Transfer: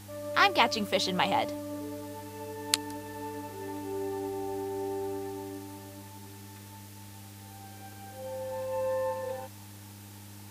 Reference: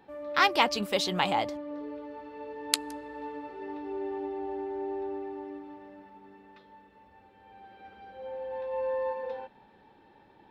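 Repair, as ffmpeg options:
-af "bandreject=f=101.2:t=h:w=4,bandreject=f=202.4:t=h:w=4,bandreject=f=303.6:t=h:w=4,afwtdn=0.0025"

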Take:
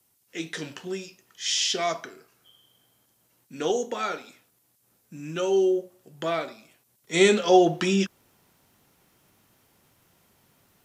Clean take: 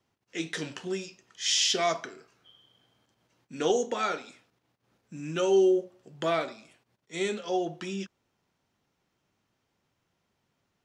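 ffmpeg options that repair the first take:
-af "agate=range=-21dB:threshold=-59dB,asetnsamples=n=441:p=0,asendcmd='7.04 volume volume -12dB',volume=0dB"

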